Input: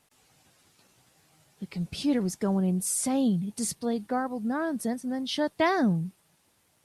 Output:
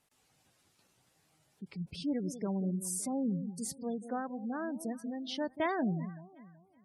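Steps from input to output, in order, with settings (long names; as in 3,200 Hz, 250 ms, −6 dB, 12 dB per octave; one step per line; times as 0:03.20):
delay that swaps between a low-pass and a high-pass 188 ms, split 810 Hz, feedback 53%, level −11.5 dB
gate on every frequency bin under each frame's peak −25 dB strong
level −8 dB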